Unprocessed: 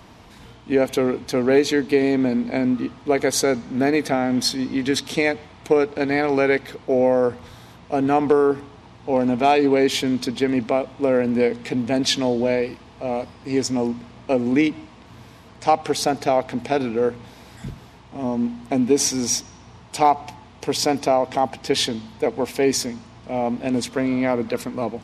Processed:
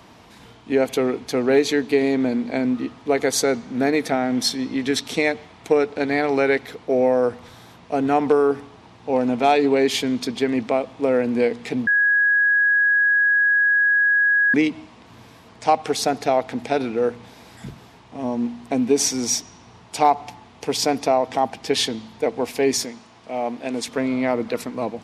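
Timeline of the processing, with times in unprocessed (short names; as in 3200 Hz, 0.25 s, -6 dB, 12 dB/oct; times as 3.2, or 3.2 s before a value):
11.87–14.54 bleep 1660 Hz -14 dBFS
22.85–23.88 low shelf 200 Hz -12 dB
whole clip: low shelf 84 Hz -11.5 dB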